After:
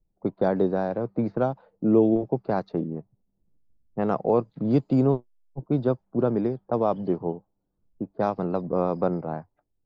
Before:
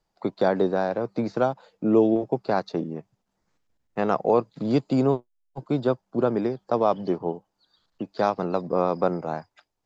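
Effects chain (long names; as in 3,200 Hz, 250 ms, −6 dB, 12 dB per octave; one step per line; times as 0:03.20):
low-pass that shuts in the quiet parts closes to 380 Hz, open at −18.5 dBFS
spectral tilt −2.5 dB per octave
level −4 dB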